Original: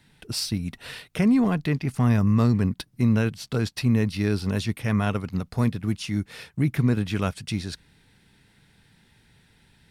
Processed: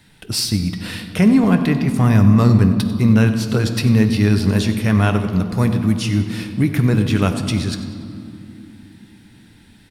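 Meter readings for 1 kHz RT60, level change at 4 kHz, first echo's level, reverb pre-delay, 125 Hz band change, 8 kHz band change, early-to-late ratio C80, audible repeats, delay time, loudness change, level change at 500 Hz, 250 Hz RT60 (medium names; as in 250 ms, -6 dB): 2.6 s, +8.0 dB, -15.0 dB, 10 ms, +8.5 dB, +9.0 dB, 9.0 dB, 1, 95 ms, +8.0 dB, +7.5 dB, 4.8 s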